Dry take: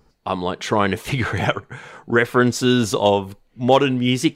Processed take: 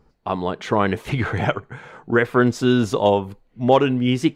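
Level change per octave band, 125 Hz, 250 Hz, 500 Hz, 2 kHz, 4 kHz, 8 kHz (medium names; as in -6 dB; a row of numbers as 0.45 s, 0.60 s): 0.0 dB, 0.0 dB, -0.5 dB, -2.5 dB, -5.5 dB, -9.0 dB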